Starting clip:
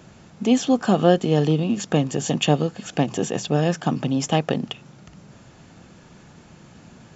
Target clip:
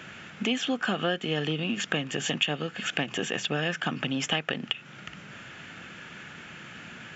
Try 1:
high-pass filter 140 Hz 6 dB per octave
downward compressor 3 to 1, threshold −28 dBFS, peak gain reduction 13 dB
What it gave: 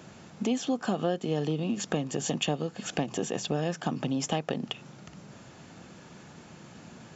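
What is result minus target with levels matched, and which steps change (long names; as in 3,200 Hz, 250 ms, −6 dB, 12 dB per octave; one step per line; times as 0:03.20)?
2,000 Hz band −9.0 dB
add after high-pass filter: flat-topped bell 2,100 Hz +13.5 dB 1.6 octaves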